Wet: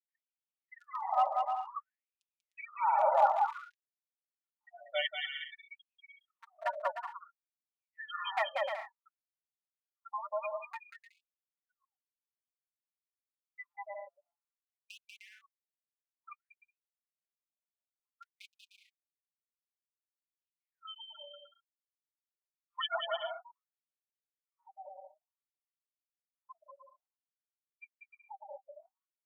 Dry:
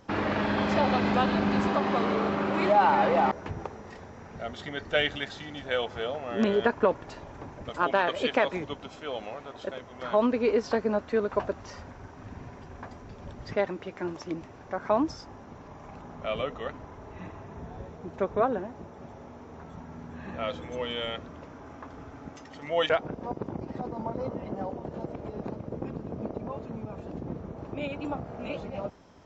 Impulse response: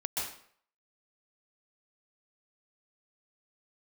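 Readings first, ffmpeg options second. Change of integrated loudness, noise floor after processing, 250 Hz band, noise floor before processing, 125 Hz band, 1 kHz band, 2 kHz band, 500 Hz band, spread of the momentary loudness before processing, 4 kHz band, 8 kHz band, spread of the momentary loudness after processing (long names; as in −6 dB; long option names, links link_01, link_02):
−5.0 dB, below −85 dBFS, below −40 dB, −47 dBFS, below −40 dB, −5.0 dB, −10.0 dB, −13.0 dB, 20 LU, −7.0 dB, can't be measured, 23 LU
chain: -filter_complex "[0:a]afftfilt=real='re*gte(hypot(re,im),0.112)':imag='im*gte(hypot(re,im),0.112)':win_size=1024:overlap=0.75,highpass=60,highshelf=frequency=3700:gain=5,tremolo=f=0.93:d=0.54,asuperstop=centerf=1600:order=12:qfactor=6.6,asoftclip=type=hard:threshold=-17dB,flanger=delay=3.1:depth=3.6:regen=26:speed=0.34:shape=sinusoidal,asplit=2[link_01][link_02];[link_02]aecho=0:1:190|304|372.4|413.4|438.1:0.631|0.398|0.251|0.158|0.1[link_03];[link_01][link_03]amix=inputs=2:normalize=0,asubboost=boost=3:cutoff=81,afftfilt=real='re*gte(b*sr/1024,530*pow(2500/530,0.5+0.5*sin(2*PI*0.55*pts/sr)))':imag='im*gte(b*sr/1024,530*pow(2500/530,0.5+0.5*sin(2*PI*0.55*pts/sr)))':win_size=1024:overlap=0.75,volume=2.5dB"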